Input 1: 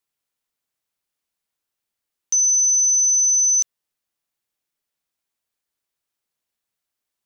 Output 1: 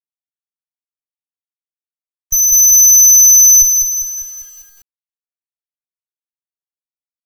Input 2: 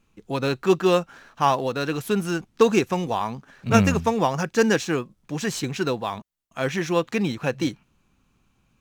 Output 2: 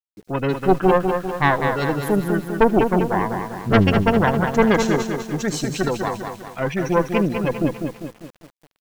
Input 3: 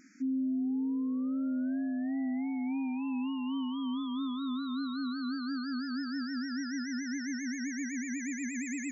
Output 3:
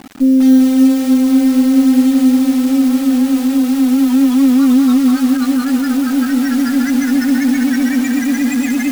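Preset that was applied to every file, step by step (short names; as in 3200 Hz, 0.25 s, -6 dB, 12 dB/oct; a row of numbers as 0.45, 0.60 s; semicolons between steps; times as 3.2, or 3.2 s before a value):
spectral gate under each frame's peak -15 dB strong; added harmonics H 4 -6 dB, 5 -23 dB, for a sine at -4.5 dBFS; bit-crush 9-bit; soft clip -2.5 dBFS; on a send: thin delay 75 ms, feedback 37%, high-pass 4500 Hz, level -10 dB; on the sum: lo-fi delay 0.199 s, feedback 55%, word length 7-bit, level -5.5 dB; normalise peaks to -1.5 dBFS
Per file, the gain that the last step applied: +2.5, +0.5, +19.0 dB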